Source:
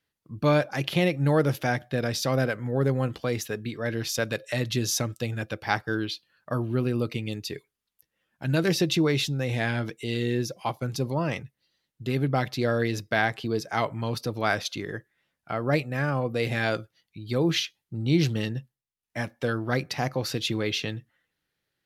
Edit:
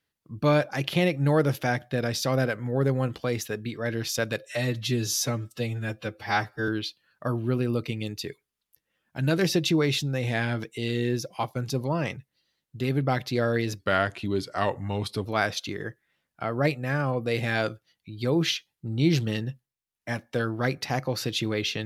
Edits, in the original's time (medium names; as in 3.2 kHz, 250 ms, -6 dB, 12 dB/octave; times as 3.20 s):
4.46–5.94 s: stretch 1.5×
13.05–14.34 s: speed 88%